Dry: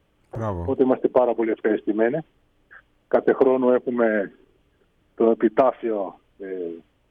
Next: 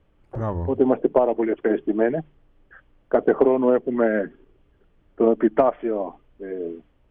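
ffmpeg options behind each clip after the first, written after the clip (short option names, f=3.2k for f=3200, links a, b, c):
-af "lowpass=f=2k:p=1,lowshelf=f=62:g=11,bandreject=f=50:t=h:w=6,bandreject=f=100:t=h:w=6,bandreject=f=150:t=h:w=6"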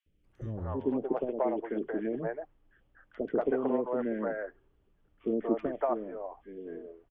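-filter_complex "[0:a]acrossover=split=470|2000[a][b][c];[a]adelay=60[d];[b]adelay=240[e];[d][e][c]amix=inputs=3:normalize=0,volume=-9dB"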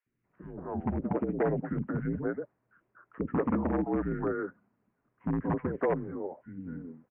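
-af "aeval=exprs='0.0708*(abs(mod(val(0)/0.0708+3,4)-2)-1)':c=same,highpass=f=310:t=q:w=0.5412,highpass=f=310:t=q:w=1.307,lowpass=f=2.3k:t=q:w=0.5176,lowpass=f=2.3k:t=q:w=0.7071,lowpass=f=2.3k:t=q:w=1.932,afreqshift=-180,volume=3dB"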